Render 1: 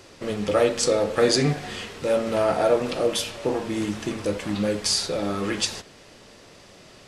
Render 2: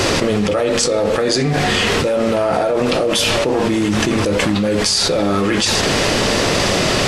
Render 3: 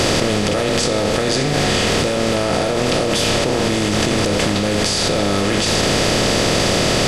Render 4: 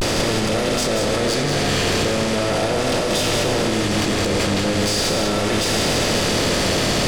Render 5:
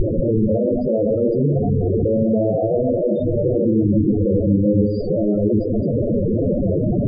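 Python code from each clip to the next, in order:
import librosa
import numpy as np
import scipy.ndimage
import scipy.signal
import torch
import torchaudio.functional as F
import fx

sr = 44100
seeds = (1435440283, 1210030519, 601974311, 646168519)

y1 = fx.high_shelf(x, sr, hz=8900.0, db=-4.5)
y1 = fx.env_flatten(y1, sr, amount_pct=100)
y1 = y1 * 10.0 ** (-1.0 / 20.0)
y2 = fx.bin_compress(y1, sr, power=0.4)
y2 = fx.low_shelf(y2, sr, hz=140.0, db=5.0)
y2 = y2 * 10.0 ** (-7.5 / 20.0)
y3 = 10.0 ** (-16.0 / 20.0) * np.tanh(y2 / 10.0 ** (-16.0 / 20.0))
y3 = fx.vibrato(y3, sr, rate_hz=0.41, depth_cents=61.0)
y3 = y3 + 10.0 ** (-5.0 / 20.0) * np.pad(y3, (int(185 * sr / 1000.0), 0))[:len(y3)]
y4 = fx.spec_topn(y3, sr, count=8)
y4 = np.convolve(y4, np.full(32, 1.0 / 32))[:len(y4)]
y4 = y4 * 10.0 ** (7.5 / 20.0)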